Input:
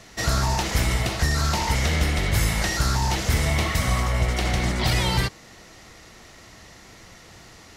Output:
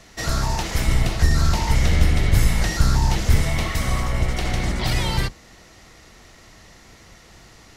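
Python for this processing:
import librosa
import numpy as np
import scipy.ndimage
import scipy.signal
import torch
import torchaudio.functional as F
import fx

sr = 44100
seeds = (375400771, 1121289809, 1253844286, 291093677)

y = fx.octave_divider(x, sr, octaves=2, level_db=0.0)
y = fx.low_shelf(y, sr, hz=210.0, db=6.0, at=(0.88, 3.42))
y = F.gain(torch.from_numpy(y), -1.5).numpy()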